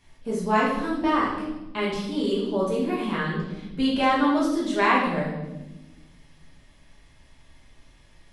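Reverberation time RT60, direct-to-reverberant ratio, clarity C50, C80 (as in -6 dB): 1.1 s, -6.0 dB, 2.5 dB, 5.5 dB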